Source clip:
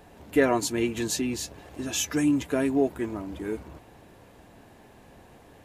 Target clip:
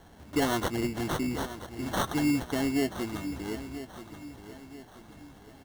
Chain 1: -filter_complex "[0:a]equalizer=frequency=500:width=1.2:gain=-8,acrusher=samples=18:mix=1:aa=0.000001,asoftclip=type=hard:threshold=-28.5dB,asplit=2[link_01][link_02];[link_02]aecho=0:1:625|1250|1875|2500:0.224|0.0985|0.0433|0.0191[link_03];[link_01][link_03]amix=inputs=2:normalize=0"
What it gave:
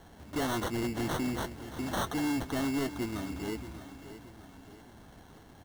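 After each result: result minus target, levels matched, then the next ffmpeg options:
hard clipping: distortion +12 dB; echo 356 ms early
-filter_complex "[0:a]equalizer=frequency=500:width=1.2:gain=-8,acrusher=samples=18:mix=1:aa=0.000001,asoftclip=type=hard:threshold=-20dB,asplit=2[link_01][link_02];[link_02]aecho=0:1:625|1250|1875|2500:0.224|0.0985|0.0433|0.0191[link_03];[link_01][link_03]amix=inputs=2:normalize=0"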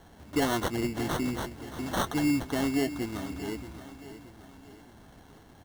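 echo 356 ms early
-filter_complex "[0:a]equalizer=frequency=500:width=1.2:gain=-8,acrusher=samples=18:mix=1:aa=0.000001,asoftclip=type=hard:threshold=-20dB,asplit=2[link_01][link_02];[link_02]aecho=0:1:981|1962|2943|3924:0.224|0.0985|0.0433|0.0191[link_03];[link_01][link_03]amix=inputs=2:normalize=0"

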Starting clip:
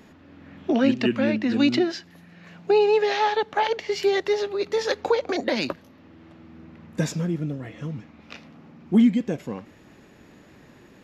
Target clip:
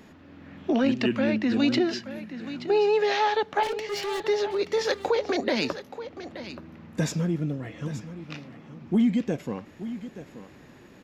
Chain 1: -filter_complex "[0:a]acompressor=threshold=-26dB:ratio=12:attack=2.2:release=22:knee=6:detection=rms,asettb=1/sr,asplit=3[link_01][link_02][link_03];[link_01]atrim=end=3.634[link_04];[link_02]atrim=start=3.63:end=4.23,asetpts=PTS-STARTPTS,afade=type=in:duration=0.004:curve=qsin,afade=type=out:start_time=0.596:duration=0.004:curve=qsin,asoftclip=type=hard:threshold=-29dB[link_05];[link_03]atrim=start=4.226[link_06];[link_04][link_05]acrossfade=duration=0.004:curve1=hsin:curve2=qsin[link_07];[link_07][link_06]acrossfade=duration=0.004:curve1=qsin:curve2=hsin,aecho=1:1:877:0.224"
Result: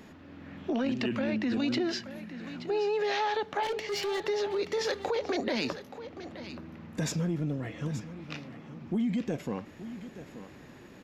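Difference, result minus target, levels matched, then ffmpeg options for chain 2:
downward compressor: peak gain reduction +8 dB
-filter_complex "[0:a]acompressor=threshold=-17dB:ratio=12:attack=2.2:release=22:knee=6:detection=rms,asettb=1/sr,asplit=3[link_01][link_02][link_03];[link_01]atrim=end=3.634[link_04];[link_02]atrim=start=3.63:end=4.23,asetpts=PTS-STARTPTS,afade=type=in:duration=0.004:curve=qsin,afade=type=out:start_time=0.596:duration=0.004:curve=qsin,asoftclip=type=hard:threshold=-29dB[link_05];[link_03]atrim=start=4.226[link_06];[link_04][link_05]acrossfade=duration=0.004:curve1=hsin:curve2=qsin[link_07];[link_07][link_06]acrossfade=duration=0.004:curve1=qsin:curve2=hsin,aecho=1:1:877:0.224"

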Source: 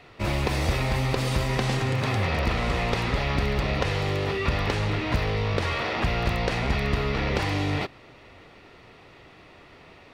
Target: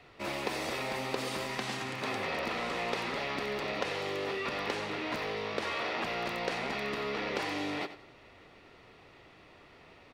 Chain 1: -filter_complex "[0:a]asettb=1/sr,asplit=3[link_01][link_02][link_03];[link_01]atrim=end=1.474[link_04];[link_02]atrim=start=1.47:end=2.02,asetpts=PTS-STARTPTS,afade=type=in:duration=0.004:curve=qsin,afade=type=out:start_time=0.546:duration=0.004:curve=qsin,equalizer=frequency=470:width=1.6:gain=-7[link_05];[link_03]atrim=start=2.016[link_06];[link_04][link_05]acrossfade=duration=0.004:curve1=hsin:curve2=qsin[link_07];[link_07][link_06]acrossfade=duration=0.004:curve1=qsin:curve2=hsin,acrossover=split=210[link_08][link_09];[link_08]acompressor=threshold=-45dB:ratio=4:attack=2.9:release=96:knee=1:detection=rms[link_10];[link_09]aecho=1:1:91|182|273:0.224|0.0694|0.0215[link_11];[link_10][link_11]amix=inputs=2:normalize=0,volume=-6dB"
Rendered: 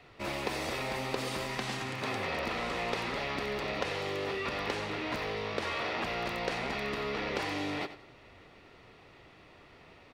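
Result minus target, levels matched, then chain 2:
downward compressor: peak gain reduction −8 dB
-filter_complex "[0:a]asettb=1/sr,asplit=3[link_01][link_02][link_03];[link_01]atrim=end=1.474[link_04];[link_02]atrim=start=1.47:end=2.02,asetpts=PTS-STARTPTS,afade=type=in:duration=0.004:curve=qsin,afade=type=out:start_time=0.546:duration=0.004:curve=qsin,equalizer=frequency=470:width=1.6:gain=-7[link_05];[link_03]atrim=start=2.016[link_06];[link_04][link_05]acrossfade=duration=0.004:curve1=hsin:curve2=qsin[link_07];[link_07][link_06]acrossfade=duration=0.004:curve1=qsin:curve2=hsin,acrossover=split=210[link_08][link_09];[link_08]acompressor=threshold=-56dB:ratio=4:attack=2.9:release=96:knee=1:detection=rms[link_10];[link_09]aecho=1:1:91|182|273:0.224|0.0694|0.0215[link_11];[link_10][link_11]amix=inputs=2:normalize=0,volume=-6dB"

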